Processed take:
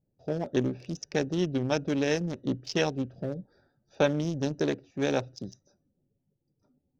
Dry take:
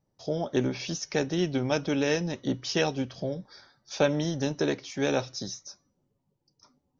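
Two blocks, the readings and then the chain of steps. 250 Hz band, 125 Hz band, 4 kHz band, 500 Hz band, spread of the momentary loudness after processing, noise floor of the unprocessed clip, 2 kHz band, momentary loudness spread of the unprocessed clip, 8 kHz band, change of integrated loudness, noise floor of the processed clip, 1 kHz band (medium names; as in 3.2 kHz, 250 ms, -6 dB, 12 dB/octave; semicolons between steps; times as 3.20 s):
-0.5 dB, 0.0 dB, -4.0 dB, -1.0 dB, 9 LU, -78 dBFS, -2.0 dB, 10 LU, no reading, -1.0 dB, -79 dBFS, -1.5 dB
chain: local Wiener filter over 41 samples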